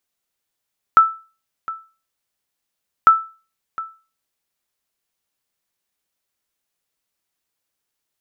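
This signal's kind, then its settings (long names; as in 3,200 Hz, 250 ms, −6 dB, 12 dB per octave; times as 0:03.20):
ping with an echo 1,320 Hz, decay 0.34 s, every 2.10 s, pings 2, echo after 0.71 s, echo −17.5 dB −2.5 dBFS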